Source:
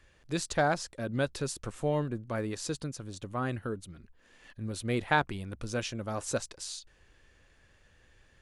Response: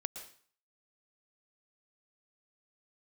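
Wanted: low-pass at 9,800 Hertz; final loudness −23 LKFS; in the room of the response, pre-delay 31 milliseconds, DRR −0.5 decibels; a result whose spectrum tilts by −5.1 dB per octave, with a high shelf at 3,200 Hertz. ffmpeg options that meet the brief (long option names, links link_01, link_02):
-filter_complex "[0:a]lowpass=9800,highshelf=frequency=3200:gain=-3.5,asplit=2[link_01][link_02];[1:a]atrim=start_sample=2205,adelay=31[link_03];[link_02][link_03]afir=irnorm=-1:irlink=0,volume=1dB[link_04];[link_01][link_04]amix=inputs=2:normalize=0,volume=8dB"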